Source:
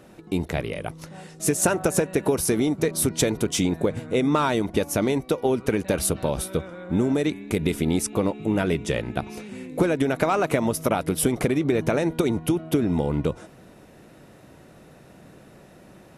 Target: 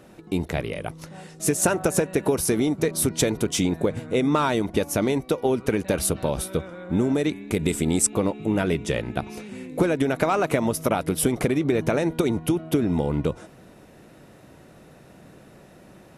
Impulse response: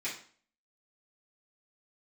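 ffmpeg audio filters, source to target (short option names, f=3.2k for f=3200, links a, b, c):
-filter_complex "[0:a]asettb=1/sr,asplit=3[a][b][c];[a]atrim=end=7.594[d];[b]atrim=start=7.59:end=8.07,asetpts=PTS-STARTPTS,afade=t=in:d=0.004:c=qsin,afade=t=out:st=0.476:d=0.004:c=qsin,equalizer=f=7.9k:w=3.5:g=14.5[e];[c]atrim=start=8.066[f];[d][e]acrossfade=d=0.004:c1=hsin:c2=qsin[g];[g][f]acrossfade=d=0.004:c1=qsin:c2=hsin"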